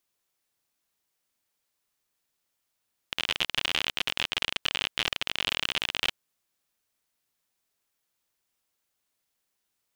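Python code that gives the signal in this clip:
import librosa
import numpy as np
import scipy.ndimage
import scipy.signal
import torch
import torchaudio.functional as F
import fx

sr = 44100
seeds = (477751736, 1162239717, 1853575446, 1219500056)

y = fx.geiger_clicks(sr, seeds[0], length_s=3.0, per_s=52.0, level_db=-10.0)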